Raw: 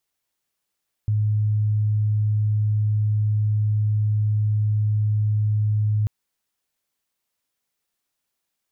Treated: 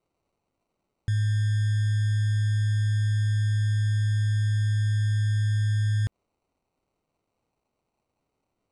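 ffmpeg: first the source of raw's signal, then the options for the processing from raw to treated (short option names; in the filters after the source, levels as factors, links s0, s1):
-f lavfi -i "sine=f=106:d=4.99:r=44100,volume=0.56dB"
-af "alimiter=limit=0.0944:level=0:latency=1:release=77,acrusher=samples=26:mix=1:aa=0.000001,aresample=22050,aresample=44100"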